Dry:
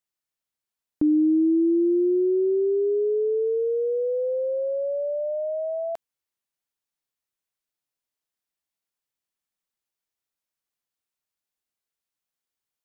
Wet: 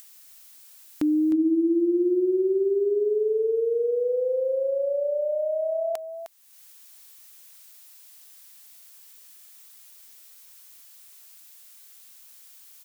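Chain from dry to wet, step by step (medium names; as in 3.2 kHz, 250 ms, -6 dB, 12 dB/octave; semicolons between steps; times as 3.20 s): tilt EQ +3.5 dB/octave; upward compressor, threshold -35 dBFS; delay 308 ms -9.5 dB; trim +3.5 dB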